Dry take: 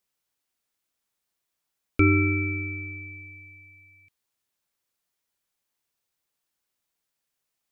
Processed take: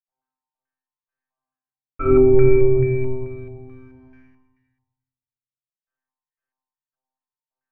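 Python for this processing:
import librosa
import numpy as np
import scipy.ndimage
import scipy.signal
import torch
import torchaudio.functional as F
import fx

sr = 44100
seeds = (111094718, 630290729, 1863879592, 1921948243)

p1 = fx.octave_divider(x, sr, octaves=2, level_db=-3.0)
p2 = fx.peak_eq(p1, sr, hz=120.0, db=8.5, octaves=0.34, at=(2.2, 3.47))
p3 = fx.over_compress(p2, sr, threshold_db=-25.0, ratio=-0.5)
p4 = p2 + (p3 * 10.0 ** (1.5 / 20.0))
p5 = fx.quant_dither(p4, sr, seeds[0], bits=10, dither='none')
p6 = fx.comb_fb(p5, sr, f0_hz=130.0, decay_s=0.97, harmonics='all', damping=0.0, mix_pct=100)
p7 = fx.echo_feedback(p6, sr, ms=101, feedback_pct=47, wet_db=-3)
p8 = fx.room_shoebox(p7, sr, seeds[1], volume_m3=230.0, walls='mixed', distance_m=6.5)
p9 = fx.filter_held_lowpass(p8, sr, hz=4.6, low_hz=840.0, high_hz=1700.0)
y = p9 * 10.0 ** (2.0 / 20.0)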